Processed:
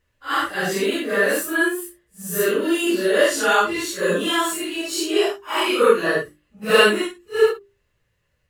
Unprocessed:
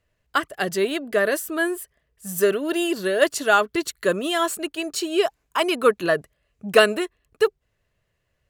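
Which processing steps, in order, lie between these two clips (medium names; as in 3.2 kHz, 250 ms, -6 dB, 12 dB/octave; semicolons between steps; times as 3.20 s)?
phase randomisation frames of 200 ms; peaking EQ 670 Hz -10 dB 0.23 oct; hum notches 50/100/150/200/250/300/350/400 Hz; endings held to a fixed fall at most 300 dB/s; trim +3.5 dB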